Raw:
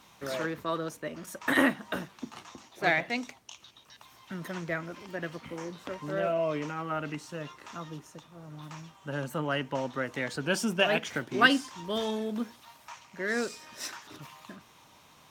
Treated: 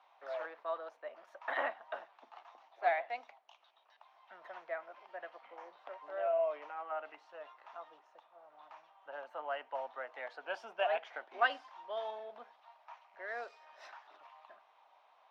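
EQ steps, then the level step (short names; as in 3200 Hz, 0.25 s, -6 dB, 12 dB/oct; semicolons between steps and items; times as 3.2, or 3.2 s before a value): ladder high-pass 630 Hz, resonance 60%; air absorption 310 m; +1.0 dB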